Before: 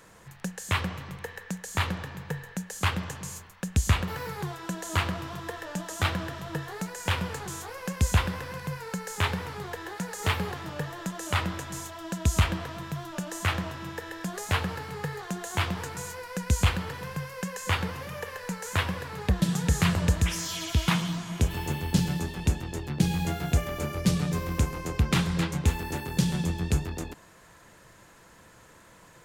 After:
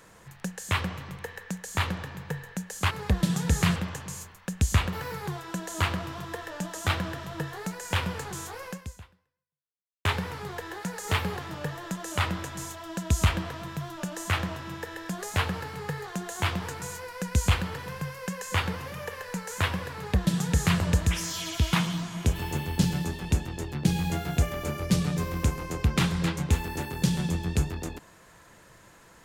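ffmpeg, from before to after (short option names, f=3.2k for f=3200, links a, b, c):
-filter_complex "[0:a]asplit=4[a][b][c][d];[a]atrim=end=2.912[e];[b]atrim=start=19.098:end=19.952[f];[c]atrim=start=2.908:end=9.2,asetpts=PTS-STARTPTS,afade=t=out:st=4.912:d=1.38:c=exp[g];[d]atrim=start=9.2,asetpts=PTS-STARTPTS,afade=t=in:d=0.004:c=hsin[h];[e][f]acrossfade=d=0.004:c1=hsin:c2=hsin[i];[g][h]concat=n=2:v=0:a=1[j];[i][j]acrossfade=d=0.004:c1=hsin:c2=hsin"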